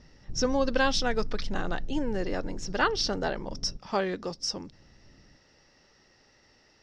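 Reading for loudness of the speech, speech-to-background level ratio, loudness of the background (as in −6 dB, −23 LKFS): −30.0 LKFS, 14.0 dB, −44.0 LKFS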